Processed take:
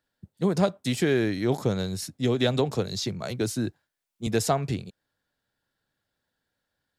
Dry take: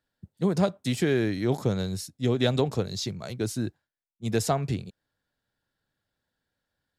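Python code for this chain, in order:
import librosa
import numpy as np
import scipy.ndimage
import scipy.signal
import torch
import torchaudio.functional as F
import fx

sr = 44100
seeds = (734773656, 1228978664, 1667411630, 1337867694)

y = fx.low_shelf(x, sr, hz=180.0, db=-4.0)
y = fx.band_squash(y, sr, depth_pct=40, at=(2.02, 4.27))
y = F.gain(torch.from_numpy(y), 2.0).numpy()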